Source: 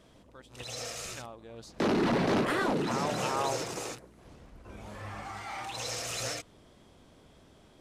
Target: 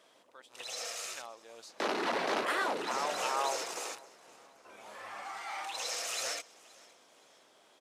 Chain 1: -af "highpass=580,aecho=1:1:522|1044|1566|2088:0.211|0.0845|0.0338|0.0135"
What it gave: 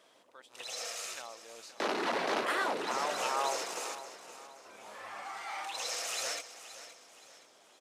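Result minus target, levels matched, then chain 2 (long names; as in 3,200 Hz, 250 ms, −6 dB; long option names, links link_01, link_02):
echo-to-direct +9.5 dB
-af "highpass=580,aecho=1:1:522|1044|1566:0.0708|0.0283|0.0113"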